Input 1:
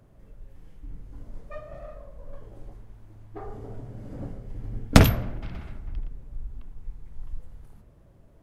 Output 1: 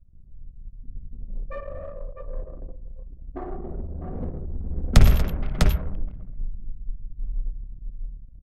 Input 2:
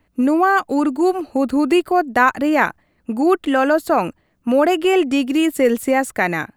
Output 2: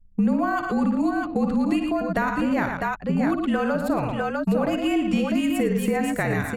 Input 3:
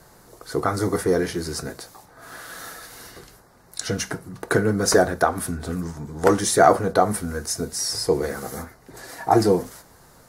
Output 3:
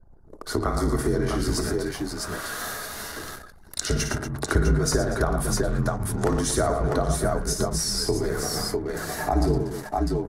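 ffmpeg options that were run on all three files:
-filter_complex "[0:a]asplit=2[a][b];[b]aecho=0:1:55|98|114|236|650|659:0.376|0.126|0.376|0.141|0.447|0.211[c];[a][c]amix=inputs=2:normalize=0,acrossover=split=160[d][e];[e]acompressor=threshold=-29dB:ratio=4[f];[d][f]amix=inputs=2:normalize=0,aeval=exprs='val(0)+0.00224*(sin(2*PI*60*n/s)+sin(2*PI*2*60*n/s)/2+sin(2*PI*3*60*n/s)/3+sin(2*PI*4*60*n/s)/4+sin(2*PI*5*60*n/s)/5)':c=same,afreqshift=-46,anlmdn=0.158,volume=4.5dB"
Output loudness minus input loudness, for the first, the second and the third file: -1.5, -6.0, -3.5 LU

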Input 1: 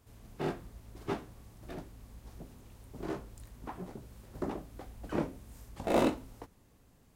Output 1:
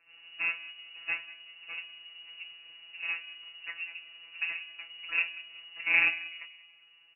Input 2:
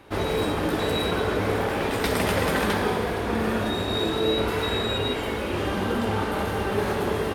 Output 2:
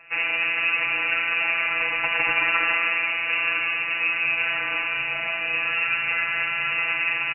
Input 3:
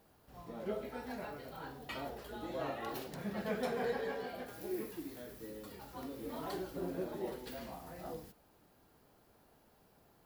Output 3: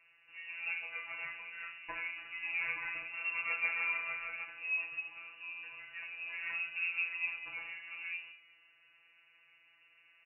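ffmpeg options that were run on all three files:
-filter_complex "[0:a]afftfilt=real='hypot(re,im)*cos(PI*b)':imag='0':win_size=1024:overlap=0.75,asplit=2[a][b];[b]adelay=188,lowpass=f=1.6k:p=1,volume=-16dB,asplit=2[c][d];[d]adelay=188,lowpass=f=1.6k:p=1,volume=0.42,asplit=2[e][f];[f]adelay=188,lowpass=f=1.6k:p=1,volume=0.42,asplit=2[g][h];[h]adelay=188,lowpass=f=1.6k:p=1,volume=0.42[i];[a][c][e][g][i]amix=inputs=5:normalize=0,lowpass=f=2.5k:t=q:w=0.5098,lowpass=f=2.5k:t=q:w=0.6013,lowpass=f=2.5k:t=q:w=0.9,lowpass=f=2.5k:t=q:w=2.563,afreqshift=-2900,volume=5.5dB"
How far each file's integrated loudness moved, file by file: +5.5, +3.5, +5.0 LU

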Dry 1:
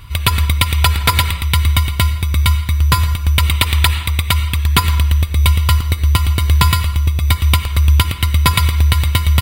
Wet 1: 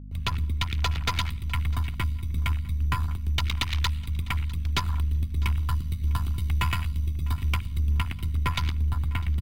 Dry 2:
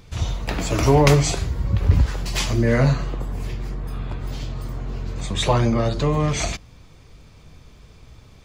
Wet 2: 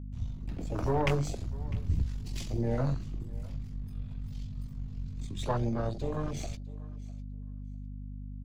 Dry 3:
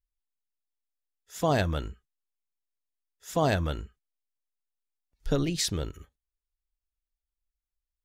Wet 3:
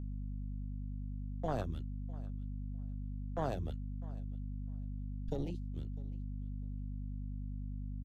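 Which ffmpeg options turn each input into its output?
-filter_complex "[0:a]aeval=exprs='if(lt(val(0),0),0.447*val(0),val(0))':c=same,bandreject=f=50:t=h:w=6,bandreject=f=100:t=h:w=6,bandreject=f=150:t=h:w=6,bandreject=f=200:t=h:w=6,afwtdn=0.0631,agate=range=-47dB:threshold=-33dB:ratio=16:detection=peak,acrossover=split=140|440|2400[a][b][c][d];[d]dynaudnorm=f=160:g=13:m=10dB[e];[a][b][c][e]amix=inputs=4:normalize=0,aeval=exprs='val(0)+0.0316*(sin(2*PI*50*n/s)+sin(2*PI*2*50*n/s)/2+sin(2*PI*3*50*n/s)/3+sin(2*PI*4*50*n/s)/4+sin(2*PI*5*50*n/s)/5)':c=same,asoftclip=type=tanh:threshold=-7.5dB,aecho=1:1:652|1304:0.0891|0.0152,volume=-9dB"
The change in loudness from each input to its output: -13.5, -13.5, -13.0 LU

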